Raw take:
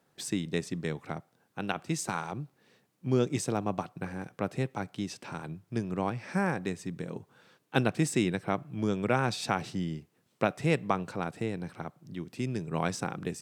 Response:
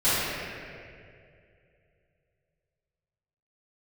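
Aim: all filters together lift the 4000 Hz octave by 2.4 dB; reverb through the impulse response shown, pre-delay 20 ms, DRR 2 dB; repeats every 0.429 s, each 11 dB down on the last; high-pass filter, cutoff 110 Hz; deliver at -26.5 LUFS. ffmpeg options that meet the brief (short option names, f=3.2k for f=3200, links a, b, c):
-filter_complex "[0:a]highpass=110,equalizer=f=4k:t=o:g=3,aecho=1:1:429|858|1287:0.282|0.0789|0.0221,asplit=2[a][b];[1:a]atrim=start_sample=2205,adelay=20[c];[b][c]afir=irnorm=-1:irlink=0,volume=-19dB[d];[a][d]amix=inputs=2:normalize=0,volume=4dB"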